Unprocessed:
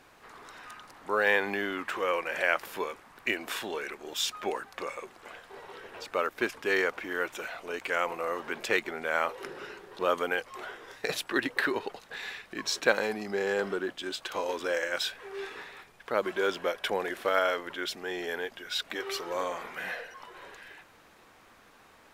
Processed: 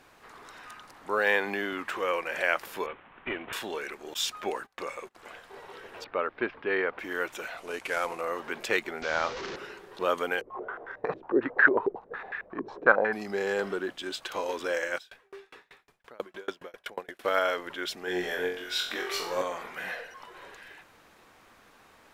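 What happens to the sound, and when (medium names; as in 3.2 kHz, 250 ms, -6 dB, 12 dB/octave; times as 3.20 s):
1.18–1.73 s: high-pass 110 Hz
2.86–3.53 s: CVSD coder 16 kbps
4.14–5.15 s: gate -47 dBFS, range -23 dB
6.04–6.99 s: Bessel low-pass 2.2 kHz, order 8
7.57–8.21 s: CVSD coder 64 kbps
9.02–9.56 s: one-bit delta coder 32 kbps, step -31 dBFS
10.41–13.13 s: step-sequenced low-pass 11 Hz 380–1600 Hz
14.97–17.23 s: sawtooth tremolo in dB decaying 4.3 Hz -> 9.7 Hz, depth 34 dB
18.05–19.42 s: flutter echo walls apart 3.8 m, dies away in 0.48 s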